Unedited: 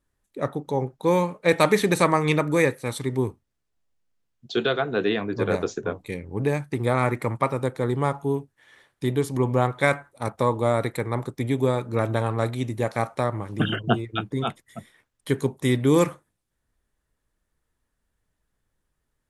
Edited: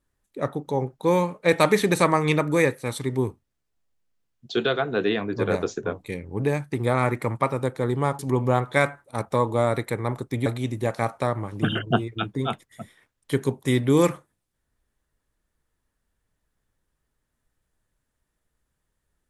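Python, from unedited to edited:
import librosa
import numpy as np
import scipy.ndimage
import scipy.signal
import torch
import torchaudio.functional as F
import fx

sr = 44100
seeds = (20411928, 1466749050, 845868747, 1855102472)

y = fx.edit(x, sr, fx.cut(start_s=8.19, length_s=1.07),
    fx.cut(start_s=11.53, length_s=0.9), tone=tone)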